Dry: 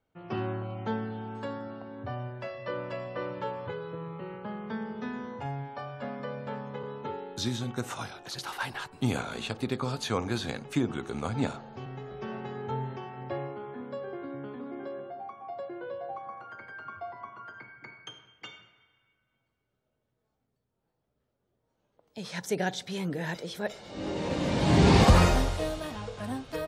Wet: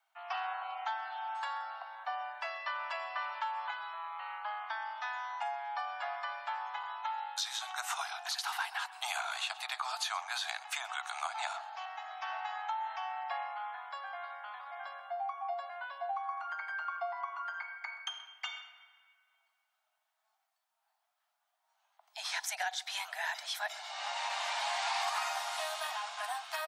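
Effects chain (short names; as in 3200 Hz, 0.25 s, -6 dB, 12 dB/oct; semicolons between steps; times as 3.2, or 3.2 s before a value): steep high-pass 680 Hz 96 dB/oct; compressor 5:1, threshold -39 dBFS, peak gain reduction 15.5 dB; echo 0.129 s -20 dB; gain +6 dB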